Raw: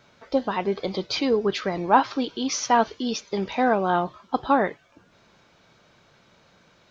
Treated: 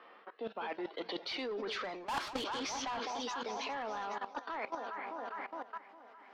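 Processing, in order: speed glide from 77% -> 141%; Doppler pass-by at 2.29, 15 m/s, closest 1.7 m; steep high-pass 200 Hz 48 dB/oct; low shelf 270 Hz -5.5 dB; on a send: echo with dull and thin repeats by turns 0.205 s, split 920 Hz, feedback 69%, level -11.5 dB; on the sum: overdrive pedal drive 34 dB, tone 4800 Hz, clips at -9.5 dBFS; level quantiser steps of 16 dB; low-pass opened by the level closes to 1900 Hz, open at -23.5 dBFS; reverse; compressor 8:1, threshold -46 dBFS, peak gain reduction 28 dB; reverse; gain +8.5 dB

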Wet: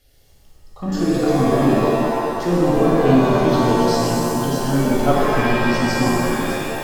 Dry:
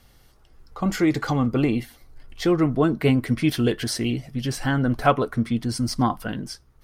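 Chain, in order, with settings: envelope phaser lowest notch 170 Hz, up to 2100 Hz, full sweep at -22.5 dBFS; shimmer reverb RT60 2.3 s, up +7 st, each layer -2 dB, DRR -5 dB; gain -3 dB

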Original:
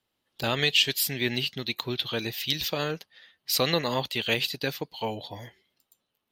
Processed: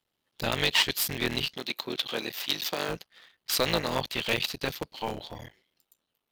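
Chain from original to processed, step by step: cycle switcher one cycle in 3, muted; 1.56–2.89 HPF 230 Hz 12 dB/oct

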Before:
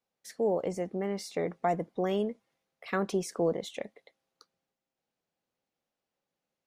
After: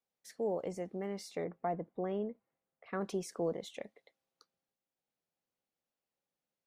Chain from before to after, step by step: 1.44–3.01 Bessel low-pass 1500 Hz, order 2; gain -6.5 dB

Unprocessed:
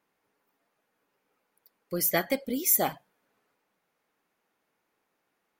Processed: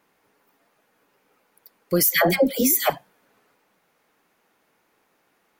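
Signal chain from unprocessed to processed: 2.03–2.9 dispersion lows, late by 0.128 s, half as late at 750 Hz; maximiser +18.5 dB; gain -7.5 dB

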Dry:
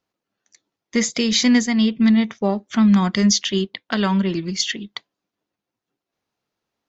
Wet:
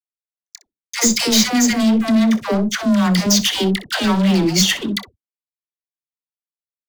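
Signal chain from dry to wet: gate with hold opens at -37 dBFS; high shelf 5300 Hz +9.5 dB; compressor, threshold -16 dBFS, peak gain reduction 7 dB; sample leveller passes 5; dispersion lows, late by 0.114 s, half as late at 570 Hz; on a send: early reflections 27 ms -17 dB, 62 ms -16 dB; on the sum: gain -7 dB

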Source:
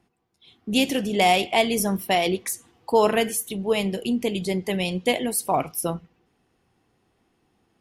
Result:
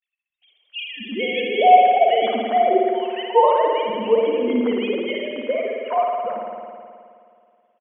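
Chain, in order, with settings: sine-wave speech; three bands offset in time highs, lows, mids 0.3/0.42 s, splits 190/1900 Hz; spring tank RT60 2.2 s, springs 53 ms, chirp 55 ms, DRR -1 dB; gain +1.5 dB

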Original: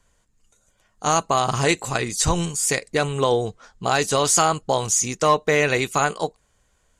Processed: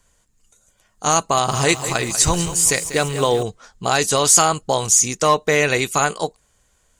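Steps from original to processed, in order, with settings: high shelf 5100 Hz +7 dB; 1.18–3.43 lo-fi delay 0.192 s, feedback 55%, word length 6-bit, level -11.5 dB; gain +1.5 dB

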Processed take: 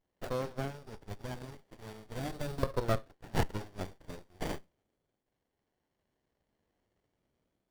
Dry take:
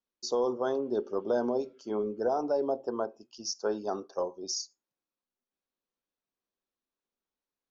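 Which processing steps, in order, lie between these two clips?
Doppler pass-by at 3.02, 18 m/s, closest 26 m; high shelf 5100 Hz +9.5 dB; sample-rate reducer 4700 Hz, jitter 0%; band noise 1100–3700 Hz -80 dBFS; LFO high-pass saw up 0.38 Hz 490–4700 Hz; running maximum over 33 samples

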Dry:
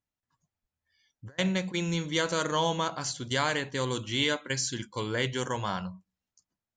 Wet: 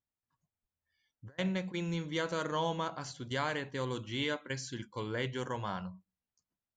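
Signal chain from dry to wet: LPF 2500 Hz 6 dB/oct; gain -5 dB

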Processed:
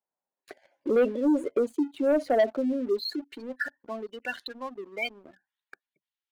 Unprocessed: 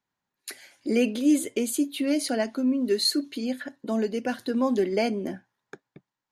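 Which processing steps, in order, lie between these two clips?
spectral gate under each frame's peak -20 dB strong; band-pass sweep 610 Hz -> 3200 Hz, 2.51–4.59; sample leveller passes 2; gain +3.5 dB

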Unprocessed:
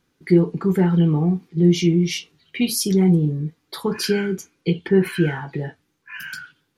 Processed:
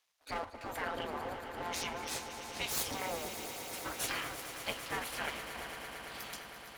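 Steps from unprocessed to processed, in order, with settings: half-wave gain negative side -12 dB; spectral gate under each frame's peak -20 dB weak; swelling echo 0.113 s, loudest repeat 5, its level -13 dB; gain -1.5 dB

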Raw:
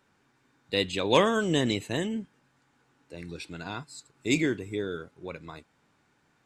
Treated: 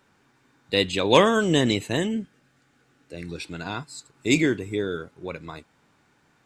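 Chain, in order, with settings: 2.11–3.25 bell 950 Hz -14.5 dB 0.23 oct; gain +5 dB

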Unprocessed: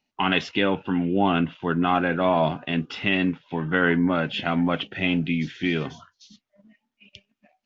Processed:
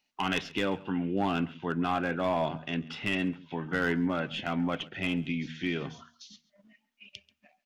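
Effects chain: tracing distortion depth 0.026 ms; de-hum 79.13 Hz, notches 3; hard clip -12.5 dBFS, distortion -20 dB; echo 0.136 s -21.5 dB; mismatched tape noise reduction encoder only; gain -7 dB

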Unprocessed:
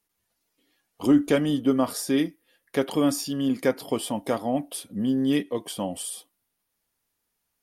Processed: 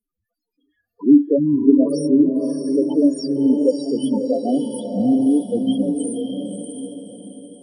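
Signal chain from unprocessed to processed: loudest bins only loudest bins 4; on a send: diffused feedback echo 0.621 s, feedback 43%, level -4 dB; on the sum: gain +7.5 dB

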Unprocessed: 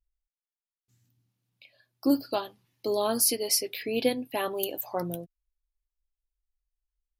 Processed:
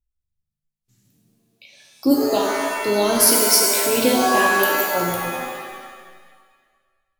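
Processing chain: spectral noise reduction 13 dB; bell 1100 Hz -3.5 dB 2.5 oct; shimmer reverb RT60 1.5 s, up +7 st, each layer -2 dB, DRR -0.5 dB; gain +7.5 dB

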